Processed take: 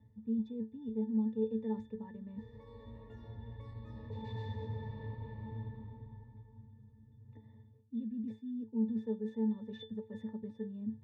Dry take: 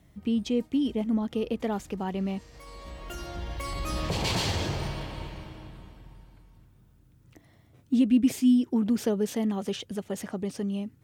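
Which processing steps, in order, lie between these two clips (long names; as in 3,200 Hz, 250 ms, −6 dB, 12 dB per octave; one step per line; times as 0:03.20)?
reversed playback
downward compressor 6 to 1, threshold −40 dBFS, peak gain reduction 21 dB
reversed playback
resonances in every octave A, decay 0.22 s
one half of a high-frequency compander decoder only
level +12.5 dB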